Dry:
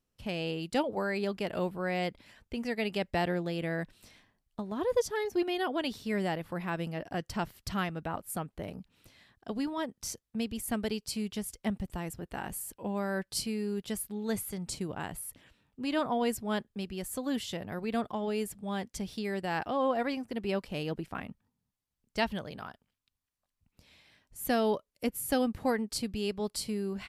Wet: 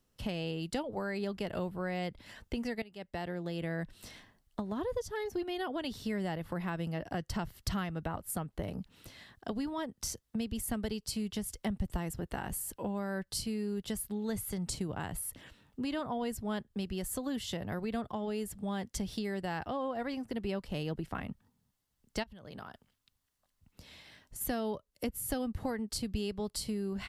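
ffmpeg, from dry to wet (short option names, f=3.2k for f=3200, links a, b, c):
-filter_complex "[0:a]asplit=3[a][b][c];[a]afade=t=out:st=22.22:d=0.02[d];[b]acompressor=threshold=-47dB:ratio=16:attack=3.2:release=140:knee=1:detection=peak,afade=t=in:st=22.22:d=0.02,afade=t=out:st=24.4:d=0.02[e];[c]afade=t=in:st=24.4:d=0.02[f];[d][e][f]amix=inputs=3:normalize=0,asplit=2[g][h];[g]atrim=end=2.82,asetpts=PTS-STARTPTS,afade=t=out:st=2.816:d=0.004:c=hsin:silence=0.11885[i];[h]atrim=start=2.82,asetpts=PTS-STARTPTS,afade=t=in:d=0.98:c=qua:silence=0.11885[j];[i][j]concat=n=2:v=0:a=1,bandreject=f=2.4k:w=12,acrossover=split=120[k][l];[l]acompressor=threshold=-43dB:ratio=4[m];[k][m]amix=inputs=2:normalize=0,volume=7dB"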